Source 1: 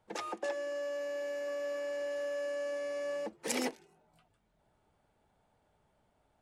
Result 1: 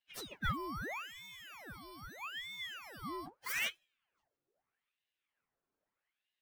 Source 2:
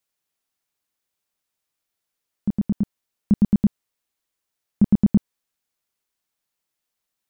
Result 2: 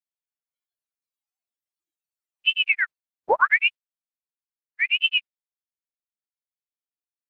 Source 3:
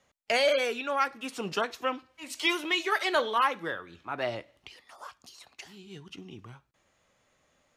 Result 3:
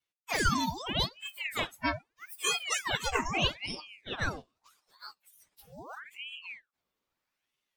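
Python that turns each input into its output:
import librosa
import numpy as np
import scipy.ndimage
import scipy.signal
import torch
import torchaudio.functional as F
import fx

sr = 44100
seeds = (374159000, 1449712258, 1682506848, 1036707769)

y = fx.partial_stretch(x, sr, pct=123)
y = fx.rider(y, sr, range_db=4, speed_s=2.0)
y = fx.noise_reduce_blind(y, sr, reduce_db=16)
y = fx.ring_lfo(y, sr, carrier_hz=1600.0, swing_pct=80, hz=0.79)
y = y * librosa.db_to_amplitude(4.0)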